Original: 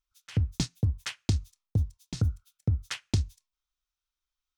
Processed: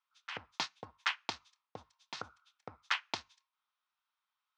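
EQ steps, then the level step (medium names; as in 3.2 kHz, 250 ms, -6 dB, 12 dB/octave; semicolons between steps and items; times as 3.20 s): resonant high-pass 960 Hz, resonance Q 2.3; low-pass 4 kHz 12 dB/octave; distance through air 66 m; +4.0 dB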